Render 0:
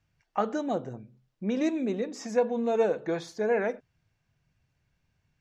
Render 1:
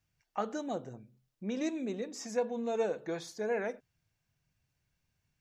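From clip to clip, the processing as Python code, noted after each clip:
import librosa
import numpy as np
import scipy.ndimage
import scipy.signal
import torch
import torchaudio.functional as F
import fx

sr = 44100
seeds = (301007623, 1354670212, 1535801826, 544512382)

y = fx.high_shelf(x, sr, hz=5100.0, db=11.5)
y = F.gain(torch.from_numpy(y), -7.0).numpy()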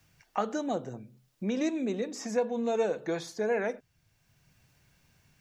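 y = fx.band_squash(x, sr, depth_pct=40)
y = F.gain(torch.from_numpy(y), 4.5).numpy()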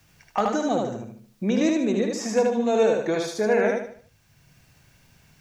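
y = np.clip(x, -10.0 ** (-19.0 / 20.0), 10.0 ** (-19.0 / 20.0))
y = fx.echo_feedback(y, sr, ms=76, feedback_pct=37, wet_db=-3.0)
y = F.gain(torch.from_numpy(y), 6.5).numpy()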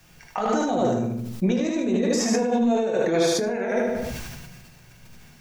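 y = fx.over_compress(x, sr, threshold_db=-26.0, ratio=-1.0)
y = fx.room_shoebox(y, sr, seeds[0], volume_m3=190.0, walls='furnished', distance_m=0.97)
y = fx.sustainer(y, sr, db_per_s=30.0)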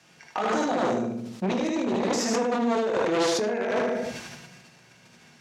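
y = np.minimum(x, 2.0 * 10.0 ** (-21.5 / 20.0) - x)
y = fx.bandpass_edges(y, sr, low_hz=210.0, high_hz=7400.0)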